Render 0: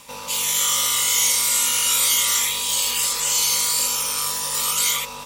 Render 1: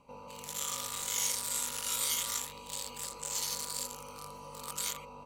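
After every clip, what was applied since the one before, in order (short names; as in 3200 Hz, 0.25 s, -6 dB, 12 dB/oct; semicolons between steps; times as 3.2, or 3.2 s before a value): Wiener smoothing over 25 samples; gain -8.5 dB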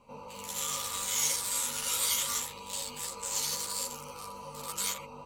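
ensemble effect; gain +6 dB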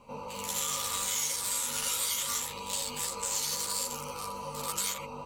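compressor, threshold -33 dBFS, peak gain reduction 8.5 dB; gain +5 dB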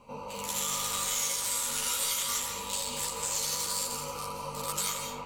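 digital reverb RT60 0.88 s, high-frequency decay 0.6×, pre-delay 0.12 s, DRR 4.5 dB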